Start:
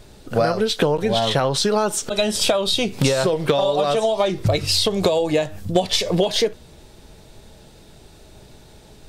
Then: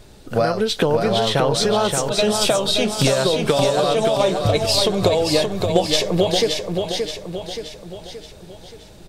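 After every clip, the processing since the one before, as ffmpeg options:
-af "aecho=1:1:575|1150|1725|2300|2875|3450:0.562|0.276|0.135|0.0662|0.0324|0.0159"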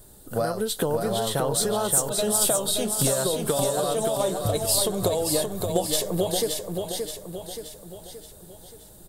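-af "equalizer=f=2400:w=2.7:g=-11,aexciter=amount=5.2:drive=7.6:freq=7900,volume=0.447"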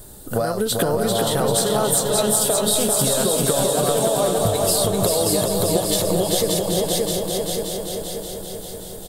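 -af "acompressor=threshold=0.0501:ratio=6,aecho=1:1:392|784|1176|1568|1960|2352|2744|3136:0.631|0.366|0.212|0.123|0.0714|0.0414|0.024|0.0139,volume=2.66"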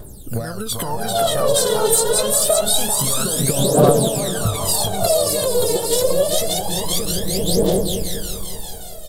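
-af "dynaudnorm=f=830:g=3:m=3.76,aphaser=in_gain=1:out_gain=1:delay=2.3:decay=0.79:speed=0.26:type=triangular,volume=0.531"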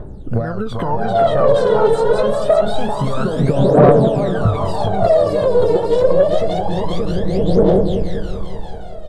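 -af "lowpass=1500,asoftclip=type=tanh:threshold=0.447,volume=2"

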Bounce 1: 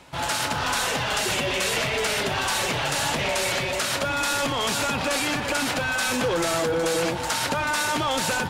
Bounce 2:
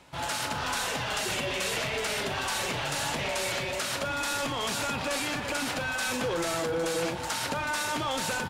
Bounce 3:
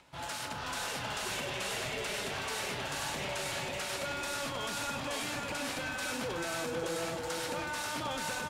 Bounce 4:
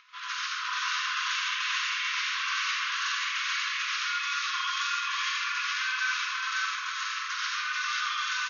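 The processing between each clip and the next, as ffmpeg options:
-filter_complex "[0:a]asplit=2[s0][s1];[s1]adelay=42,volume=0.224[s2];[s0][s2]amix=inputs=2:normalize=0,volume=0.501"
-filter_complex "[0:a]acrossover=split=600|6700[s0][s1][s2];[s1]acompressor=mode=upward:threshold=0.00224:ratio=2.5[s3];[s0][s3][s2]amix=inputs=3:normalize=0,aecho=1:1:536:0.708,volume=0.422"
-af "highshelf=f=5200:g=-7.5,afftfilt=real='re*between(b*sr/4096,1000,6800)':imag='im*between(b*sr/4096,1000,6800)':win_size=4096:overlap=0.75,aecho=1:1:90.38|139.9|221.6:0.794|0.891|0.282,volume=2.11"

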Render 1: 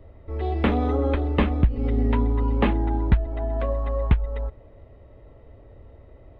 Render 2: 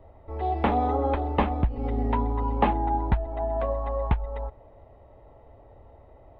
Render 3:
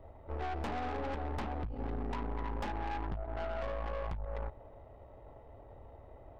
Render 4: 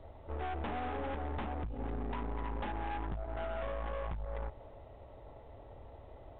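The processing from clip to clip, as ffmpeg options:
-af "equalizer=f=820:w=1.7:g=13.5,volume=0.531"
-af "acompressor=threshold=0.0355:ratio=2.5,aeval=exprs='(tanh(63.1*val(0)+0.6)-tanh(0.6))/63.1':c=same,volume=1.12"
-filter_complex "[0:a]asplit=2[s0][s1];[s1]asoftclip=type=tanh:threshold=0.0106,volume=0.596[s2];[s0][s2]amix=inputs=2:normalize=0,volume=0.708" -ar 8000 -c:a pcm_alaw

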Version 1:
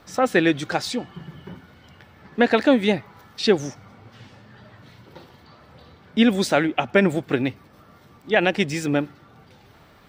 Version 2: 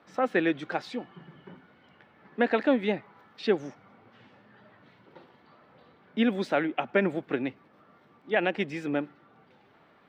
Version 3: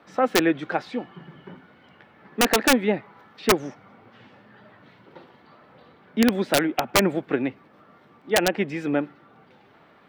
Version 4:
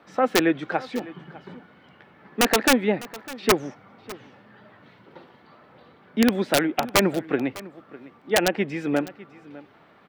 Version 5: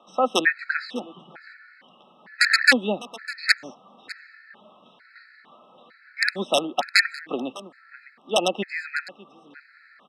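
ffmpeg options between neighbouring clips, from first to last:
-filter_complex "[0:a]acrossover=split=160 3400:gain=0.112 1 0.126[s0][s1][s2];[s0][s1][s2]amix=inputs=3:normalize=0,volume=0.473"
-filter_complex "[0:a]acrossover=split=2700[s0][s1];[s1]acompressor=threshold=0.00282:ratio=4:attack=1:release=60[s2];[s0][s2]amix=inputs=2:normalize=0,aeval=exprs='(mod(5.62*val(0)+1,2)-1)/5.62':c=same,volume=1.88"
-af "aecho=1:1:603:0.112"
-af "highpass=f=220:w=0.5412,highpass=f=220:w=1.3066,equalizer=f=300:t=q:w=4:g=-10,equalizer=f=430:t=q:w=4:g=-7,equalizer=f=930:t=q:w=4:g=-3,equalizer=f=1800:t=q:w=4:g=10,equalizer=f=4400:t=q:w=4:g=9,equalizer=f=6700:t=q:w=4:g=-6,lowpass=f=9400:w=0.5412,lowpass=f=9400:w=1.3066,afftfilt=real='re*gt(sin(2*PI*1.1*pts/sr)*(1-2*mod(floor(b*sr/1024/1300),2)),0)':imag='im*gt(sin(2*PI*1.1*pts/sr)*(1-2*mod(floor(b*sr/1024/1300),2)),0)':win_size=1024:overlap=0.75,volume=1.33"

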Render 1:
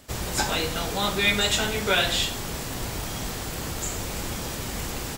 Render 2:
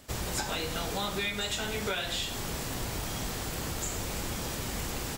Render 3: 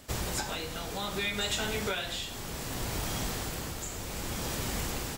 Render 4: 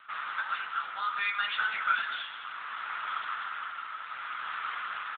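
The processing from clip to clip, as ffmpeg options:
-af "acompressor=threshold=0.0501:ratio=12,volume=0.75"
-af "tremolo=f=0.64:d=0.48,volume=1.19"
-filter_complex "[0:a]highpass=f=1300:t=q:w=5.5,asplit=2[s0][s1];[s1]adelay=210,highpass=300,lowpass=3400,asoftclip=type=hard:threshold=0.0708,volume=0.355[s2];[s0][s2]amix=inputs=2:normalize=0" -ar 8000 -c:a libopencore_amrnb -b:a 7950

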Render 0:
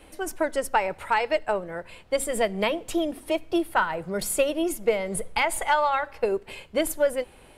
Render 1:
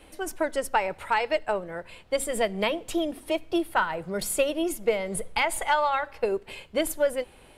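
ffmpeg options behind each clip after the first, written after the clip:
-af "equalizer=f=3500:w=1.5:g=2,volume=0.841"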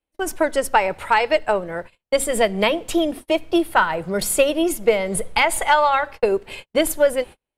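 -af "agate=range=0.00794:threshold=0.01:ratio=16:detection=peak,volume=2.37"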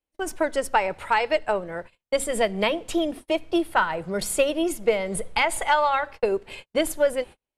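-af "lowpass=11000,volume=0.596"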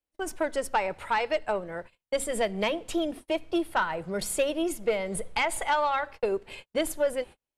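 -af "asoftclip=type=tanh:threshold=0.237,volume=0.668"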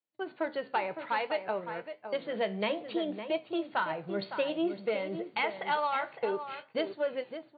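-filter_complex "[0:a]afftfilt=real='re*between(b*sr/4096,110,4600)':imag='im*between(b*sr/4096,110,4600)':win_size=4096:overlap=0.75,flanger=delay=7.6:depth=8:regen=73:speed=0.58:shape=triangular,asplit=2[s0][s1];[s1]adelay=559.8,volume=0.355,highshelf=f=4000:g=-12.6[s2];[s0][s2]amix=inputs=2:normalize=0"

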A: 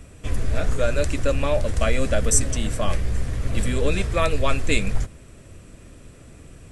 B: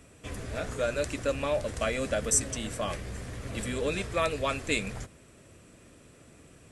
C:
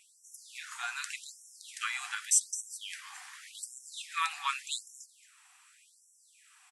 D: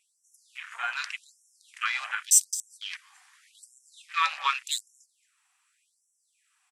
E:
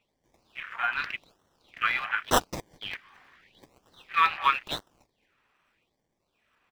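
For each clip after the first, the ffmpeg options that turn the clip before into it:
-af "highpass=f=190:p=1,volume=0.562"
-af "aecho=1:1:223:0.168,afftfilt=real='re*gte(b*sr/1024,700*pow(5500/700,0.5+0.5*sin(2*PI*0.86*pts/sr)))':imag='im*gte(b*sr/1024,700*pow(5500/700,0.5+0.5*sin(2*PI*0.86*pts/sr)))':win_size=1024:overlap=0.75"
-af "afwtdn=0.00708,volume=2.11"
-filter_complex "[0:a]highshelf=f=4200:g=-9.5,acrossover=split=680|4500[s0][s1][s2];[s2]acrusher=samples=26:mix=1:aa=0.000001:lfo=1:lforange=15.6:lforate=1.2[s3];[s0][s1][s3]amix=inputs=3:normalize=0,volume=1.68"

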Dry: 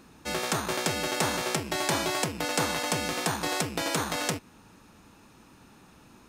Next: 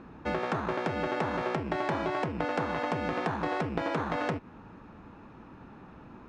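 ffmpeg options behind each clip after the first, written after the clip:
-af "lowpass=1600,acompressor=threshold=0.0224:ratio=6,volume=2"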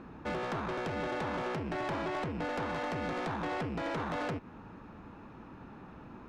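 -af "asoftclip=type=tanh:threshold=0.0299"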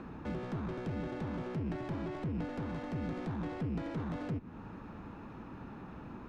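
-filter_complex "[0:a]acrossover=split=310[s0][s1];[s1]acompressor=threshold=0.002:ratio=3[s2];[s0][s2]amix=inputs=2:normalize=0,volume=1.5"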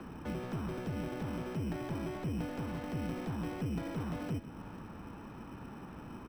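-filter_complex "[0:a]aecho=1:1:492:0.178,acrossover=split=180|370|2600[s0][s1][s2][s3];[s1]acrusher=samples=16:mix=1:aa=0.000001[s4];[s0][s4][s2][s3]amix=inputs=4:normalize=0"

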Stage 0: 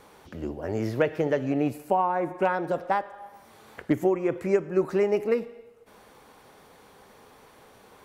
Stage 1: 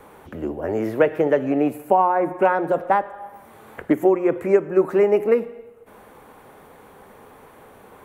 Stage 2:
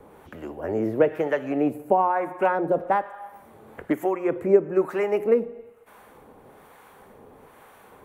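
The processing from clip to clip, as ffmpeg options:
-filter_complex "[0:a]acrossover=split=230|980[s0][s1][s2];[s0]acompressor=threshold=0.00631:ratio=6[s3];[s3][s1][s2]amix=inputs=3:normalize=0,equalizer=f=5000:t=o:w=1.3:g=-14.5,bandreject=f=60:t=h:w=6,bandreject=f=120:t=h:w=6,bandreject=f=180:t=h:w=6,volume=2.37"
-filter_complex "[0:a]acrossover=split=720[s0][s1];[s0]aeval=exprs='val(0)*(1-0.7/2+0.7/2*cos(2*PI*1.1*n/s))':c=same[s2];[s1]aeval=exprs='val(0)*(1-0.7/2-0.7/2*cos(2*PI*1.1*n/s))':c=same[s3];[s2][s3]amix=inputs=2:normalize=0"

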